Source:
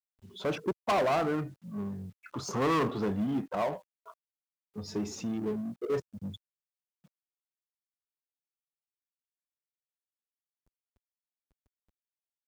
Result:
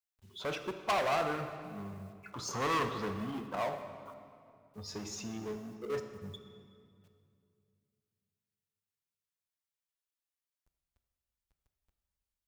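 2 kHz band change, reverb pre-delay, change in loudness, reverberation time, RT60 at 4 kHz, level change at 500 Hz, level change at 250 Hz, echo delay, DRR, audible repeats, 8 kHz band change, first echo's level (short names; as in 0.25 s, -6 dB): 0.0 dB, 8 ms, -4.5 dB, 2.3 s, 1.7 s, -5.0 dB, -8.5 dB, none, 7.0 dB, none, +0.5 dB, none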